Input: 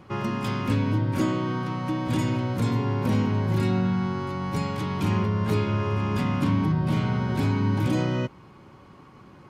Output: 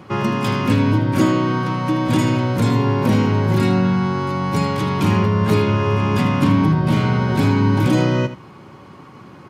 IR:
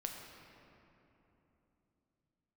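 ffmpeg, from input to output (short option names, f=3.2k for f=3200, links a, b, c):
-filter_complex "[0:a]highpass=93,asplit=2[a][b];[b]aecho=0:1:79:0.224[c];[a][c]amix=inputs=2:normalize=0,volume=8.5dB"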